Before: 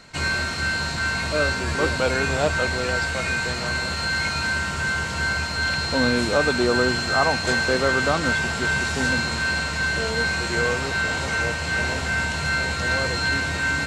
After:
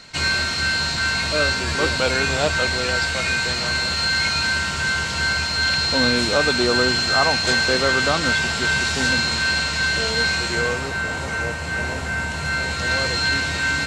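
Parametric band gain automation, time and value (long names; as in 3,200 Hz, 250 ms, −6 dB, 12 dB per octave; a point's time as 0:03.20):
parametric band 4,200 Hz 1.9 octaves
0:10.32 +7.5 dB
0:10.99 −4 dB
0:12.23 −4 dB
0:13.02 +5.5 dB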